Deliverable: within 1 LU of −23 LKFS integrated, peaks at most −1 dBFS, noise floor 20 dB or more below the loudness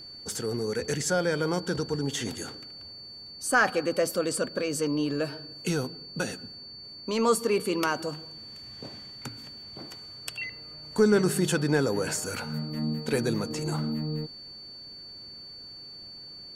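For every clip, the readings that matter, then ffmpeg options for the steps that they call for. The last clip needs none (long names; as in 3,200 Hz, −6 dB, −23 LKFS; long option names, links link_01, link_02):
interfering tone 4,500 Hz; level of the tone −42 dBFS; integrated loudness −28.5 LKFS; sample peak −10.5 dBFS; target loudness −23.0 LKFS
→ -af "bandreject=frequency=4500:width=30"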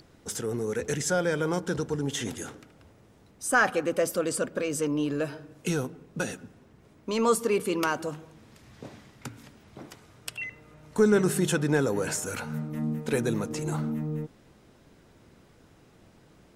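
interfering tone none found; integrated loudness −28.5 LKFS; sample peak −10.5 dBFS; target loudness −23.0 LKFS
→ -af "volume=5.5dB"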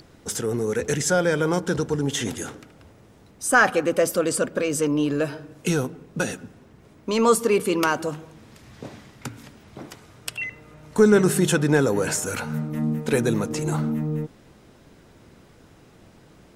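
integrated loudness −23.0 LKFS; sample peak −5.0 dBFS; background noise floor −52 dBFS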